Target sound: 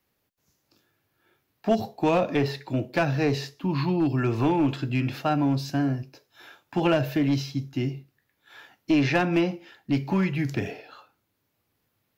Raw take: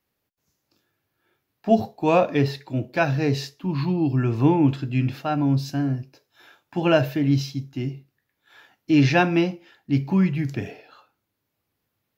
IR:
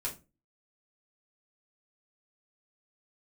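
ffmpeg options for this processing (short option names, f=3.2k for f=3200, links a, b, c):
-filter_complex "[0:a]acrossover=split=330|2500[a][b][c];[a]acompressor=threshold=-29dB:ratio=4[d];[b]acompressor=threshold=-25dB:ratio=4[e];[c]acompressor=threshold=-41dB:ratio=4[f];[d][e][f]amix=inputs=3:normalize=0,aeval=exprs='clip(val(0),-1,0.0944)':c=same,volume=3dB"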